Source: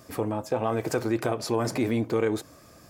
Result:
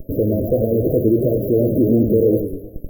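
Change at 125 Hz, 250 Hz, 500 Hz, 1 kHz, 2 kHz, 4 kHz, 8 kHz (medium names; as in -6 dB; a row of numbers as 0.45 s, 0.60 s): +12.0 dB, +11.5 dB, +11.0 dB, under -10 dB, under -40 dB, under -40 dB, under -15 dB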